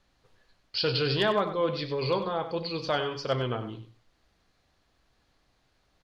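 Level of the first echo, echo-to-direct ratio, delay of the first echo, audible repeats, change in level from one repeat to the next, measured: -11.0 dB, -11.0 dB, 96 ms, 2, -15.0 dB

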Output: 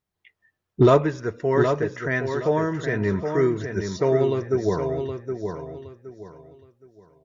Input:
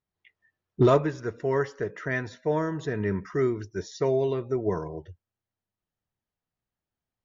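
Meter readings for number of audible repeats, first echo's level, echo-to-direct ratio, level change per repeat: 3, -6.5 dB, -6.0 dB, -11.0 dB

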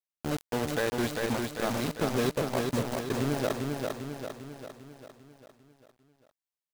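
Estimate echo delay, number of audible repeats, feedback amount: 398 ms, 6, 54%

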